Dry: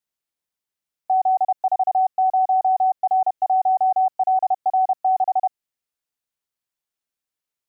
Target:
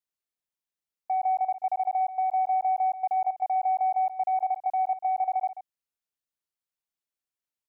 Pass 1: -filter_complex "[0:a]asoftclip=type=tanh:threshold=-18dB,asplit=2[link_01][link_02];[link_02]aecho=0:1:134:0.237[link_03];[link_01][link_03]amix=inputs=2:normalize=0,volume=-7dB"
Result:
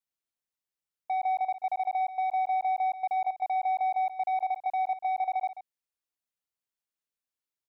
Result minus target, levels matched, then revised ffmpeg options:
soft clipping: distortion +11 dB
-filter_complex "[0:a]asoftclip=type=tanh:threshold=-11dB,asplit=2[link_01][link_02];[link_02]aecho=0:1:134:0.237[link_03];[link_01][link_03]amix=inputs=2:normalize=0,volume=-7dB"

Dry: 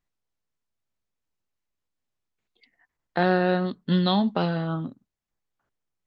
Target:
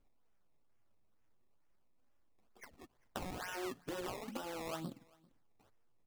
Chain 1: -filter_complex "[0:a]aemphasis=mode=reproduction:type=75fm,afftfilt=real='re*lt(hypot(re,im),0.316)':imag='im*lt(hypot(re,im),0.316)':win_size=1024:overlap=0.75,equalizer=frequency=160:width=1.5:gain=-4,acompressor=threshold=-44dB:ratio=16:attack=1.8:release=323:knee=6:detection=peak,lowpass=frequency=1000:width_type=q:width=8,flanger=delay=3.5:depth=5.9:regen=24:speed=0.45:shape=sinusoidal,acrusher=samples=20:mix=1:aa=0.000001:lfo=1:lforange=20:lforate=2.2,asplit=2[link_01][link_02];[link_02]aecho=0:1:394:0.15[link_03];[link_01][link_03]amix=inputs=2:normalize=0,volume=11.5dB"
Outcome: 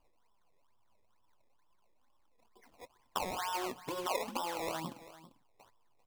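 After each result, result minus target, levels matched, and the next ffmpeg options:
echo-to-direct +9.5 dB; 1,000 Hz band +3.5 dB
-filter_complex "[0:a]aemphasis=mode=reproduction:type=75fm,afftfilt=real='re*lt(hypot(re,im),0.316)':imag='im*lt(hypot(re,im),0.316)':win_size=1024:overlap=0.75,equalizer=frequency=160:width=1.5:gain=-4,acompressor=threshold=-44dB:ratio=16:attack=1.8:release=323:knee=6:detection=peak,lowpass=frequency=1000:width_type=q:width=8,flanger=delay=3.5:depth=5.9:regen=24:speed=0.45:shape=sinusoidal,acrusher=samples=20:mix=1:aa=0.000001:lfo=1:lforange=20:lforate=2.2,asplit=2[link_01][link_02];[link_02]aecho=0:1:394:0.0501[link_03];[link_01][link_03]amix=inputs=2:normalize=0,volume=11.5dB"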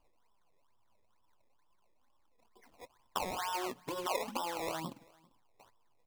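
1,000 Hz band +3.5 dB
-filter_complex "[0:a]aemphasis=mode=reproduction:type=75fm,afftfilt=real='re*lt(hypot(re,im),0.316)':imag='im*lt(hypot(re,im),0.316)':win_size=1024:overlap=0.75,equalizer=frequency=160:width=1.5:gain=-4,acompressor=threshold=-44dB:ratio=16:attack=1.8:release=323:knee=6:detection=peak,flanger=delay=3.5:depth=5.9:regen=24:speed=0.45:shape=sinusoidal,acrusher=samples=20:mix=1:aa=0.000001:lfo=1:lforange=20:lforate=2.2,asplit=2[link_01][link_02];[link_02]aecho=0:1:394:0.0501[link_03];[link_01][link_03]amix=inputs=2:normalize=0,volume=11.5dB"

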